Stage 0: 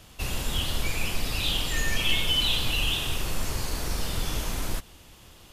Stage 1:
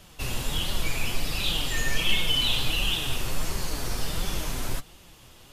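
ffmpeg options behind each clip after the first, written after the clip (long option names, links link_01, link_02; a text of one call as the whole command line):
ffmpeg -i in.wav -af "flanger=delay=4.9:depth=3.7:regen=46:speed=1.4:shape=triangular,volume=4dB" out.wav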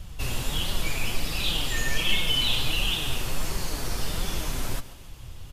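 ffmpeg -i in.wav -filter_complex "[0:a]acrossover=split=120|2000[link_01][link_02][link_03];[link_01]acompressor=mode=upward:threshold=-24dB:ratio=2.5[link_04];[link_04][link_02][link_03]amix=inputs=3:normalize=0,aecho=1:1:139|278|417|556|695:0.15|0.0778|0.0405|0.021|0.0109" out.wav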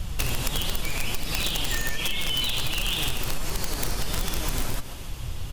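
ffmpeg -i in.wav -af "alimiter=limit=-20dB:level=0:latency=1:release=249,acompressor=threshold=-30dB:ratio=6,aeval=exprs='(mod(17.8*val(0)+1,2)-1)/17.8':channel_layout=same,volume=8.5dB" out.wav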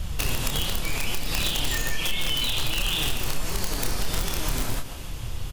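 ffmpeg -i in.wav -filter_complex "[0:a]asplit=2[link_01][link_02];[link_02]adelay=28,volume=-6dB[link_03];[link_01][link_03]amix=inputs=2:normalize=0" out.wav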